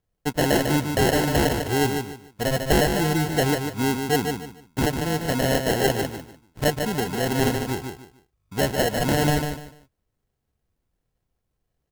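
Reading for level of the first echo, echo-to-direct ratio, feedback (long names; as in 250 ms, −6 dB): −6.0 dB, −5.5 dB, 26%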